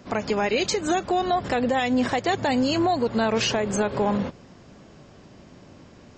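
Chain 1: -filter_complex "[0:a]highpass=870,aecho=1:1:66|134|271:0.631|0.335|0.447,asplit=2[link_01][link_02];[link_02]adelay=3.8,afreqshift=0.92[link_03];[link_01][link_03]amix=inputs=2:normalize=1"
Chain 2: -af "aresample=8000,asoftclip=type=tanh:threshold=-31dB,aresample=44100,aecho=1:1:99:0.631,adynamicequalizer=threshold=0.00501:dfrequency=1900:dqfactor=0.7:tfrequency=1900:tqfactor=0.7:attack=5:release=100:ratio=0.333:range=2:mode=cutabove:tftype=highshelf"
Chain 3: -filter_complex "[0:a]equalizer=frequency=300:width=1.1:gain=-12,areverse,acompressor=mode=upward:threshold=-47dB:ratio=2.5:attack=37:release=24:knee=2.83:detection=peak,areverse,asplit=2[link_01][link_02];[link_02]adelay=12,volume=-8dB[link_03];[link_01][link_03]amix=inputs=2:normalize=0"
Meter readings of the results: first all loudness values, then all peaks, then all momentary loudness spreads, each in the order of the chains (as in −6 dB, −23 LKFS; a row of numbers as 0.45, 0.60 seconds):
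−29.5, −32.5, −26.5 LKFS; −14.0, −25.0, −12.0 dBFS; 7, 16, 5 LU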